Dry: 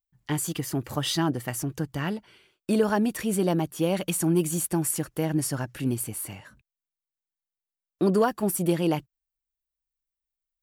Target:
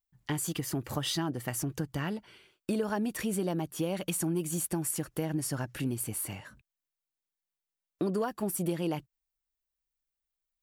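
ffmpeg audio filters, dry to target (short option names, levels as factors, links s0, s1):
-af "acompressor=threshold=0.0316:ratio=3"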